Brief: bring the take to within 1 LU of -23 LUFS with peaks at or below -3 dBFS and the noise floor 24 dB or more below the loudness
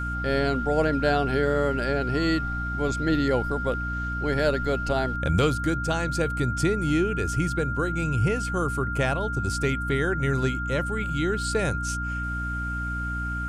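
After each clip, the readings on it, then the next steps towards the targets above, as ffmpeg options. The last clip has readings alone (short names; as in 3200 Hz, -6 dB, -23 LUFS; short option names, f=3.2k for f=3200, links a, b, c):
hum 60 Hz; harmonics up to 300 Hz; hum level -29 dBFS; steady tone 1400 Hz; tone level -30 dBFS; loudness -25.5 LUFS; peak -8.5 dBFS; loudness target -23.0 LUFS
-> -af "bandreject=f=60:t=h:w=4,bandreject=f=120:t=h:w=4,bandreject=f=180:t=h:w=4,bandreject=f=240:t=h:w=4,bandreject=f=300:t=h:w=4"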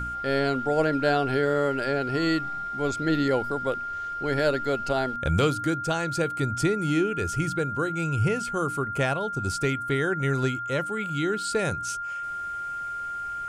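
hum none; steady tone 1400 Hz; tone level -30 dBFS
-> -af "bandreject=f=1.4k:w=30"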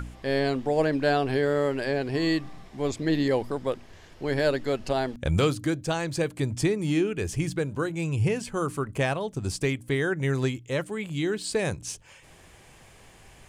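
steady tone none; loudness -27.5 LUFS; peak -10.0 dBFS; loudness target -23.0 LUFS
-> -af "volume=4.5dB"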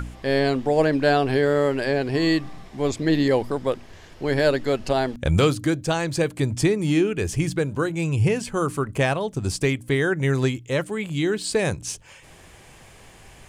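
loudness -23.0 LUFS; peak -5.5 dBFS; noise floor -48 dBFS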